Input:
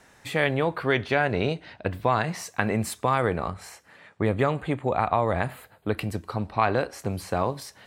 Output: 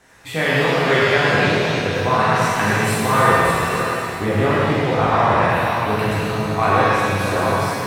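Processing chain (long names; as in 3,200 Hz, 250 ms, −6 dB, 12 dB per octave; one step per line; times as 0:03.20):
feedback delay that plays each chunk backwards 319 ms, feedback 44%, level −5.5 dB
echo through a band-pass that steps 106 ms, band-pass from 1,300 Hz, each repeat 1.4 octaves, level −2 dB
reverb with rising layers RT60 1.7 s, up +7 semitones, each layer −8 dB, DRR −7 dB
level −1 dB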